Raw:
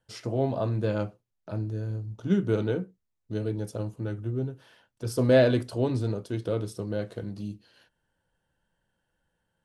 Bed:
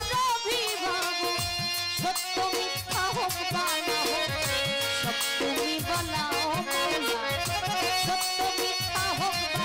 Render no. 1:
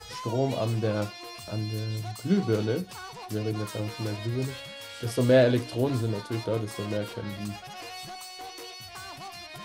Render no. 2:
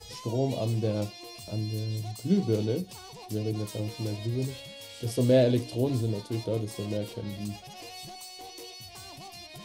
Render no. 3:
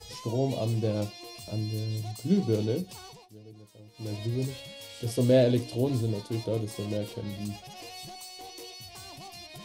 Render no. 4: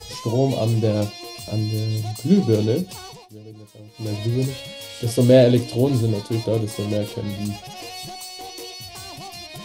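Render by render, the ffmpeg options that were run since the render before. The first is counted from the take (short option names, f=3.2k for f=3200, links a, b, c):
-filter_complex "[1:a]volume=-13.5dB[a];[0:a][a]amix=inputs=2:normalize=0"
-af "equalizer=f=1.4k:w=1.2:g=-14"
-filter_complex "[0:a]asplit=3[a][b][c];[a]atrim=end=3.29,asetpts=PTS-STARTPTS,afade=t=out:st=3.06:d=0.23:silence=0.11885[d];[b]atrim=start=3.29:end=3.93,asetpts=PTS-STARTPTS,volume=-18.5dB[e];[c]atrim=start=3.93,asetpts=PTS-STARTPTS,afade=t=in:d=0.23:silence=0.11885[f];[d][e][f]concat=n=3:v=0:a=1"
-af "volume=8.5dB"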